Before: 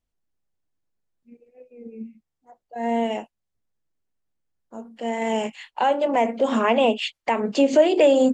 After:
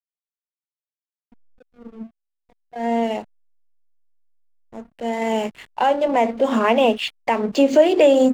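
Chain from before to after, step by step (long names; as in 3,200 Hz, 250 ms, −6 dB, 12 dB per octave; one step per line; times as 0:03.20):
slack as between gear wheels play −36 dBFS
level +2.5 dB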